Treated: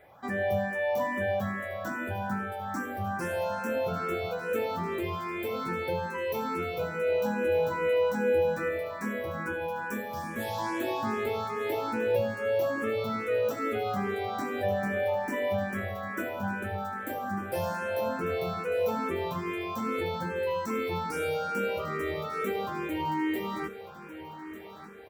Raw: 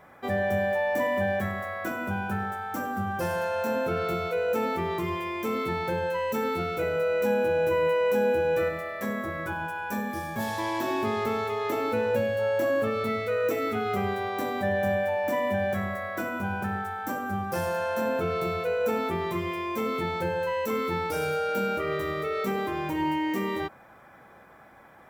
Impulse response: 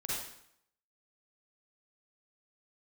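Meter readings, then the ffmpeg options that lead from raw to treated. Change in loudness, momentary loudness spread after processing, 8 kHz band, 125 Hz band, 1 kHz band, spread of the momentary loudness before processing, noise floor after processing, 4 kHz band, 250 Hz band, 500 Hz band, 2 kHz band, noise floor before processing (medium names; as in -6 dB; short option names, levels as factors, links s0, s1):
-2.5 dB, 7 LU, -2.5 dB, -3.0 dB, -3.0 dB, 7 LU, -43 dBFS, -3.0 dB, -2.5 dB, -2.5 dB, -2.5 dB, -52 dBFS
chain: -filter_complex "[0:a]asplit=2[s0][s1];[s1]aecho=0:1:1198|2396|3594|4792|5990:0.211|0.104|0.0507|0.0249|0.0122[s2];[s0][s2]amix=inputs=2:normalize=0,asplit=2[s3][s4];[s4]afreqshift=2.4[s5];[s3][s5]amix=inputs=2:normalize=1"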